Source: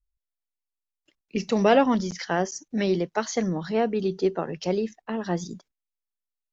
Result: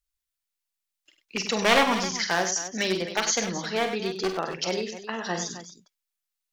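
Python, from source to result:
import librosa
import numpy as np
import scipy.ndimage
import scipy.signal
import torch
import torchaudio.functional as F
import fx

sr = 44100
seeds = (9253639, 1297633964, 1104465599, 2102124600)

y = np.minimum(x, 2.0 * 10.0 ** (-18.0 / 20.0) - x)
y = fx.tilt_shelf(y, sr, db=-8.5, hz=800.0)
y = fx.echo_multitap(y, sr, ms=(42, 48, 98, 264), db=(-16.5, -9.0, -9.5, -13.0))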